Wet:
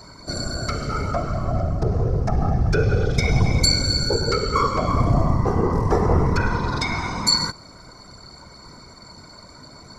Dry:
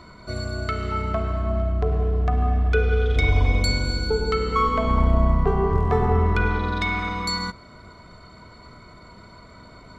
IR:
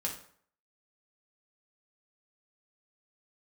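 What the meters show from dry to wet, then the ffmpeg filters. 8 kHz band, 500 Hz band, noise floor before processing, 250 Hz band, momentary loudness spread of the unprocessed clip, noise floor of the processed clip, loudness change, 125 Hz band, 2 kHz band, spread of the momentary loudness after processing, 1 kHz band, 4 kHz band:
no reading, +0.5 dB, -47 dBFS, +3.0 dB, 7 LU, -45 dBFS, +1.5 dB, +2.0 dB, -1.5 dB, 8 LU, +0.5 dB, +8.5 dB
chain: -af "afftfilt=real='hypot(re,im)*cos(2*PI*random(0))':imag='hypot(re,im)*sin(2*PI*random(1))':win_size=512:overlap=0.75,highshelf=f=4100:t=q:w=3:g=8.5,volume=2.24"

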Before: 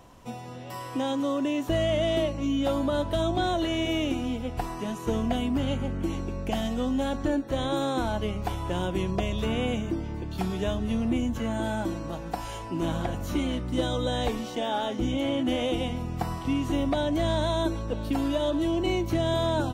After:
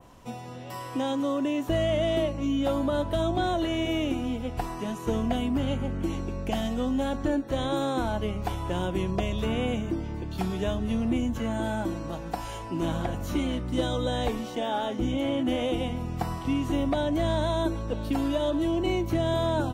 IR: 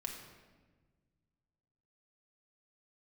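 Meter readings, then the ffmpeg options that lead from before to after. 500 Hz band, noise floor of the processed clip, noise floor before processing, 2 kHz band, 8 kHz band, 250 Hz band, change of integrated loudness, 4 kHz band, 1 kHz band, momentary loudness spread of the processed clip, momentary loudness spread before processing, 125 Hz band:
0.0 dB, -38 dBFS, -38 dBFS, -0.5 dB, -1.5 dB, 0.0 dB, 0.0 dB, -2.0 dB, 0.0 dB, 6 LU, 6 LU, 0.0 dB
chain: -af "adynamicequalizer=threshold=0.00501:dfrequency=4900:dqfactor=0.73:tfrequency=4900:tqfactor=0.73:attack=5:release=100:ratio=0.375:range=2:mode=cutabove:tftype=bell"

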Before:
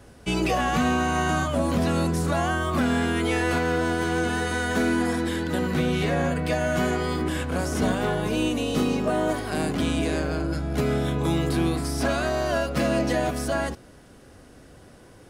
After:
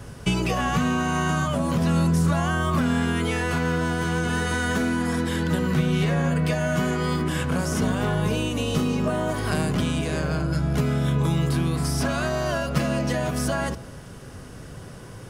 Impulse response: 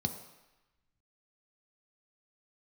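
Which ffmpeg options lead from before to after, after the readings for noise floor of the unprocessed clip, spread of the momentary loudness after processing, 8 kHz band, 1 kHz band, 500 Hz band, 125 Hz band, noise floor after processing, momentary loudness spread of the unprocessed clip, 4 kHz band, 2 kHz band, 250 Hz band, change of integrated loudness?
-49 dBFS, 4 LU, +1.5 dB, -1.0 dB, -2.0 dB, +5.0 dB, -40 dBFS, 4 LU, +0.5 dB, 0.0 dB, +0.5 dB, +1.0 dB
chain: -filter_complex "[0:a]acompressor=threshold=0.0355:ratio=6,asplit=2[s0][s1];[1:a]atrim=start_sample=2205,highshelf=f=4700:g=-10.5[s2];[s1][s2]afir=irnorm=-1:irlink=0,volume=0.188[s3];[s0][s3]amix=inputs=2:normalize=0,volume=2.66"

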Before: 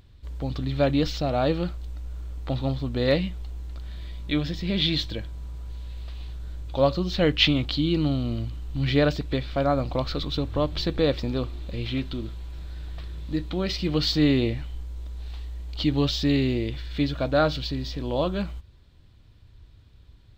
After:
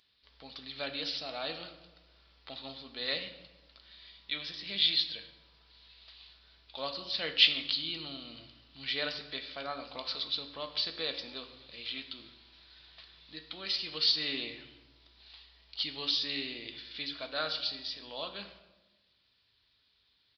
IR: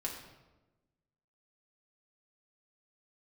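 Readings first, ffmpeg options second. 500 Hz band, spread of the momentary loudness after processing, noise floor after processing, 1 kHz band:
-17.5 dB, 21 LU, -72 dBFS, -12.5 dB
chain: -filter_complex "[0:a]aderivative,aresample=11025,aresample=44100,asplit=2[s0][s1];[1:a]atrim=start_sample=2205[s2];[s1][s2]afir=irnorm=-1:irlink=0,volume=0.944[s3];[s0][s3]amix=inputs=2:normalize=0"

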